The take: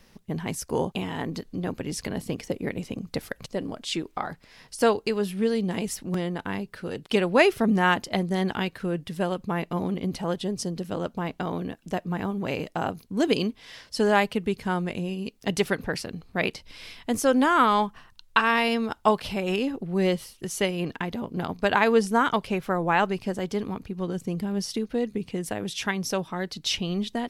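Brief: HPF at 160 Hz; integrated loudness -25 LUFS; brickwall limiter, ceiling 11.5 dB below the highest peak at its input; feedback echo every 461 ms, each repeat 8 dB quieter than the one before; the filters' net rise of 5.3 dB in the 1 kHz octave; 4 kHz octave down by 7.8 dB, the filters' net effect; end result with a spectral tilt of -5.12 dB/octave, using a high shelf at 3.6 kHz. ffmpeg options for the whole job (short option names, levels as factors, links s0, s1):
-af "highpass=160,equalizer=f=1000:t=o:g=7.5,highshelf=f=3600:g=-7,equalizer=f=4000:t=o:g=-7.5,alimiter=limit=0.224:level=0:latency=1,aecho=1:1:461|922|1383|1844|2305:0.398|0.159|0.0637|0.0255|0.0102,volume=1.26"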